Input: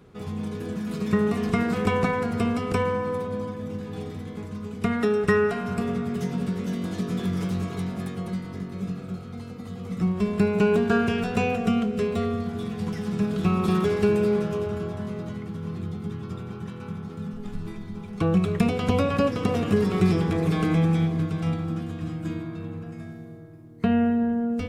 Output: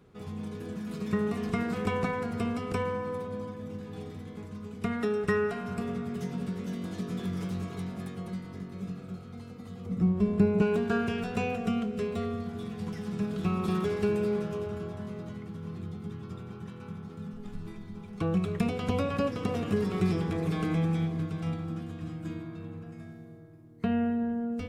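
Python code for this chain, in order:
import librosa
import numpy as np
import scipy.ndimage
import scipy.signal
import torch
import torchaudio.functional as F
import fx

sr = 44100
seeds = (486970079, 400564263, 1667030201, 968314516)

y = fx.tilt_shelf(x, sr, db=6.0, hz=860.0, at=(9.86, 10.62))
y = y * 10.0 ** (-6.5 / 20.0)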